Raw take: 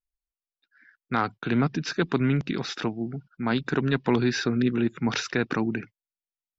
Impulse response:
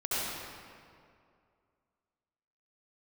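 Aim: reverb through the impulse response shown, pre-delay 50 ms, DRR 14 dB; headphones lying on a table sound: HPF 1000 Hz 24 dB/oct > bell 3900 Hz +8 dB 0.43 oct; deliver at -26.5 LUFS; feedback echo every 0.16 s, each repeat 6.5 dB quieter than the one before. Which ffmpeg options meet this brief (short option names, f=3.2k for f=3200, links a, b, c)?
-filter_complex "[0:a]aecho=1:1:160|320|480|640|800|960:0.473|0.222|0.105|0.0491|0.0231|0.0109,asplit=2[a][b];[1:a]atrim=start_sample=2205,adelay=50[c];[b][c]afir=irnorm=-1:irlink=0,volume=-22.5dB[d];[a][d]amix=inputs=2:normalize=0,highpass=f=1k:w=0.5412,highpass=f=1k:w=1.3066,equalizer=f=3.9k:t=o:w=0.43:g=8,volume=4dB"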